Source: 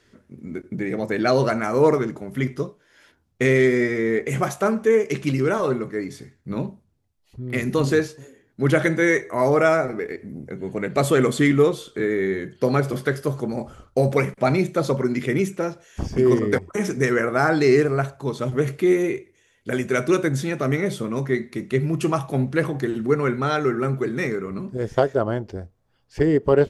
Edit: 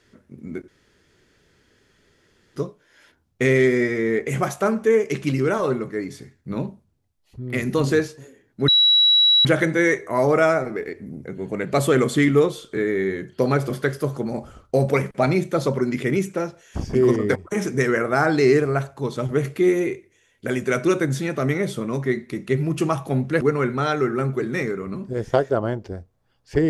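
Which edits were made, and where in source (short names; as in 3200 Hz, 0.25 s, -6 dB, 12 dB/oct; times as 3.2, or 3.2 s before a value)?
0.68–2.56 room tone
8.68 add tone 3900 Hz -12 dBFS 0.77 s
22.64–23.05 cut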